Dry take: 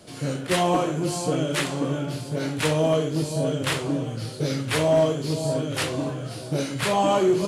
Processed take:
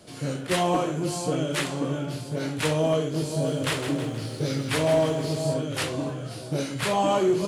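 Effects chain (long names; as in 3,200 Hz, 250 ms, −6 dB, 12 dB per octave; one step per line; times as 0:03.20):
0:02.98–0:05.54: feedback echo at a low word length 159 ms, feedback 55%, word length 9 bits, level −8.5 dB
level −2 dB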